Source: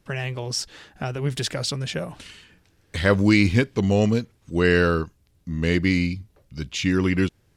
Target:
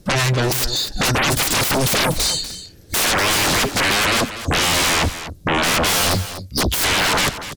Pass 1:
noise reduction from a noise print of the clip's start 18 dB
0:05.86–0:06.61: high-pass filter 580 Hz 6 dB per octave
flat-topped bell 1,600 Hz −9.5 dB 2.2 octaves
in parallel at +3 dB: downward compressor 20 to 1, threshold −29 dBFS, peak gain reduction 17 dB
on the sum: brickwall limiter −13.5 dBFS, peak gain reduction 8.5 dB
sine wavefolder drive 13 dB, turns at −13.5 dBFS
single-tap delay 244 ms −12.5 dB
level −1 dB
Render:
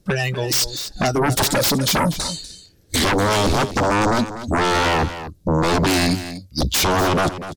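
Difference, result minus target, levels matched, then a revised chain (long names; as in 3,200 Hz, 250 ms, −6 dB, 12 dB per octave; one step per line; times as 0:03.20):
sine wavefolder: distortion −9 dB
noise reduction from a noise print of the clip's start 18 dB
0:05.86–0:06.61: high-pass filter 580 Hz 6 dB per octave
flat-topped bell 1,600 Hz −9.5 dB 2.2 octaves
in parallel at +3 dB: downward compressor 20 to 1, threshold −29 dBFS, peak gain reduction 17 dB
on the sum: brickwall limiter −13.5 dBFS, peak gain reduction 8.5 dB
sine wavefolder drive 23 dB, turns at −13.5 dBFS
single-tap delay 244 ms −12.5 dB
level −1 dB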